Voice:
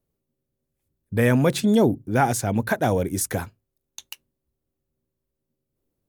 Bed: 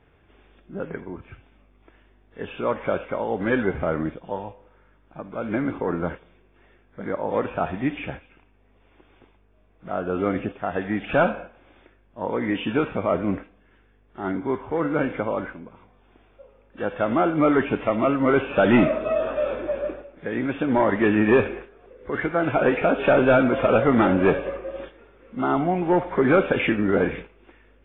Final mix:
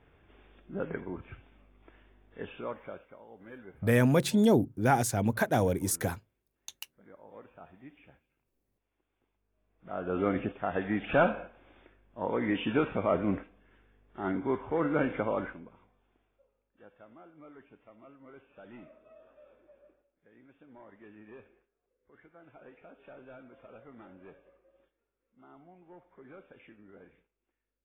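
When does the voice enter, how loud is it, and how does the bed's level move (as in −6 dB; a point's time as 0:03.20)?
2.70 s, −5.0 dB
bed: 0:02.28 −3.5 dB
0:03.20 −26 dB
0:09.12 −26 dB
0:10.18 −5 dB
0:15.45 −5 dB
0:17.18 −33.5 dB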